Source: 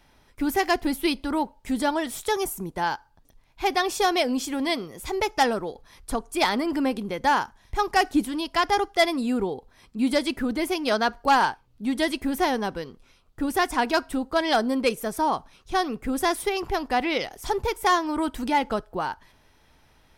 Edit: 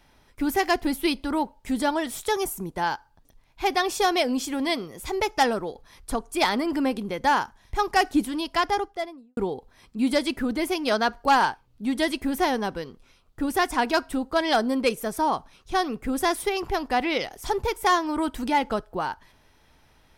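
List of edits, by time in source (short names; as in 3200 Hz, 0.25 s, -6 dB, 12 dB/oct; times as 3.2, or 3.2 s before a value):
8.5–9.37 studio fade out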